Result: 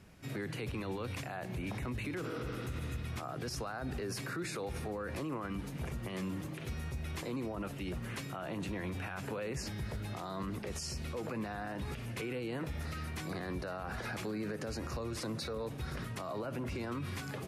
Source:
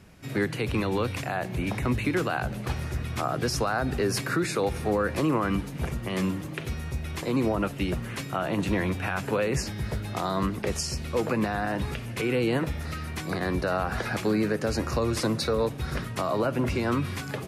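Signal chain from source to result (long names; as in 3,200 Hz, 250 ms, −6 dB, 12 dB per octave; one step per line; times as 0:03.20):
healed spectral selection 0:02.27–0:02.99, 200–6,000 Hz both
brickwall limiter −25.5 dBFS, peak gain reduction 10 dB
level −5.5 dB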